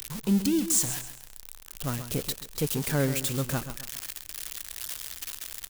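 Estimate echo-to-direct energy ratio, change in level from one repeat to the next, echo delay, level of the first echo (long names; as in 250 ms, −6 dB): −10.5 dB, −9.5 dB, 133 ms, −11.0 dB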